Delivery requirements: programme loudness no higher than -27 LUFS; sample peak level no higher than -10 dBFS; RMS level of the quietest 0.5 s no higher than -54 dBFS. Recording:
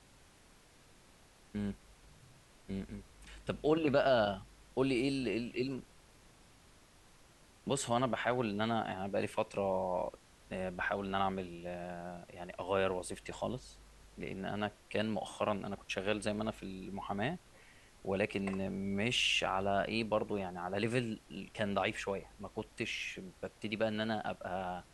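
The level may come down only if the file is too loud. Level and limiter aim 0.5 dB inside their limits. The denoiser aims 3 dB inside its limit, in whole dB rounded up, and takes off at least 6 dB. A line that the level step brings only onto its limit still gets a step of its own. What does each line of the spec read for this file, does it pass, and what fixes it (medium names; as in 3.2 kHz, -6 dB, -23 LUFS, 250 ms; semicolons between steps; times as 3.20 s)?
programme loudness -36.5 LUFS: pass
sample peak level -17.0 dBFS: pass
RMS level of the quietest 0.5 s -62 dBFS: pass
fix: none needed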